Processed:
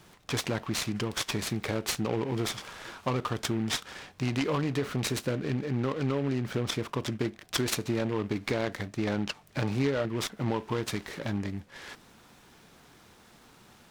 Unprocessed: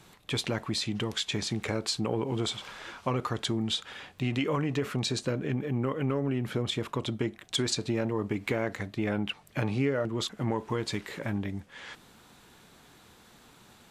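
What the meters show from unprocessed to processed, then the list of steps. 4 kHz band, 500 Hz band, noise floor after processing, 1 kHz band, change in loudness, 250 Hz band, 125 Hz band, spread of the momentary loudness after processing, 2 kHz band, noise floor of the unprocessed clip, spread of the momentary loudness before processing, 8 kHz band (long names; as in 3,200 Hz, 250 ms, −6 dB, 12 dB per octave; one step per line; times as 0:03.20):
−2.0 dB, 0.0 dB, −57 dBFS, +0.5 dB, 0.0 dB, 0.0 dB, 0.0 dB, 6 LU, +1.0 dB, −57 dBFS, 6 LU, +2.0 dB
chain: short delay modulated by noise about 1,700 Hz, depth 0.046 ms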